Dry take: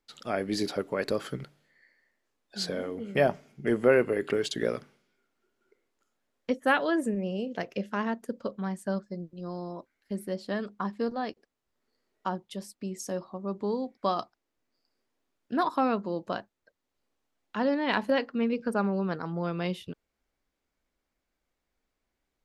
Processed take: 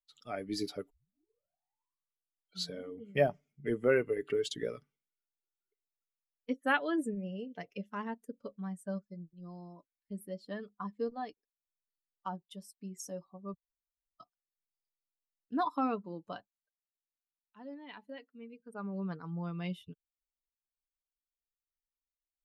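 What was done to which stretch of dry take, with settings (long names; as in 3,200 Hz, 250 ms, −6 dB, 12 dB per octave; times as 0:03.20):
0:00.90: tape start 1.81 s
0:13.54–0:14.20: fill with room tone
0:16.37–0:19.05: duck −10.5 dB, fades 0.39 s
whole clip: spectral dynamics exaggerated over time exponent 1.5; comb filter 6.9 ms, depth 32%; level −3.5 dB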